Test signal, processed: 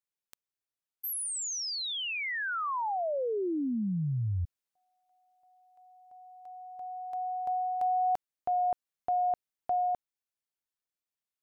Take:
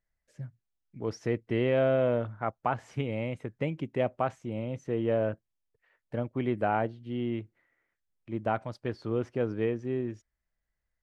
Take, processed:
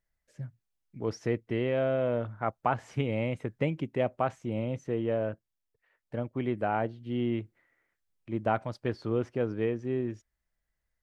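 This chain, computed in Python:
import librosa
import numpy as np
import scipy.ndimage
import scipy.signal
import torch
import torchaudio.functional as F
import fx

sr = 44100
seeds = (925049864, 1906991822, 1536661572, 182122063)

y = fx.rider(x, sr, range_db=3, speed_s=0.5)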